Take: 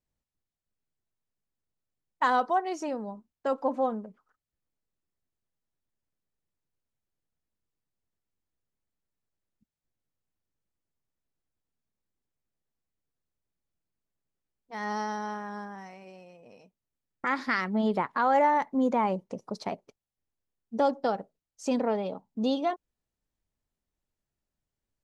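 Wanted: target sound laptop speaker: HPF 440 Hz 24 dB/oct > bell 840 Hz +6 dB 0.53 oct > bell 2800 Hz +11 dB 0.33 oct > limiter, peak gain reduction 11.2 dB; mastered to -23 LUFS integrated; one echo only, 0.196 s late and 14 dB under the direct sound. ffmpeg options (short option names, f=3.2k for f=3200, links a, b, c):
-af "highpass=f=440:w=0.5412,highpass=f=440:w=1.3066,equalizer=f=840:t=o:w=0.53:g=6,equalizer=f=2.8k:t=o:w=0.33:g=11,aecho=1:1:196:0.2,volume=9.5dB,alimiter=limit=-12dB:level=0:latency=1"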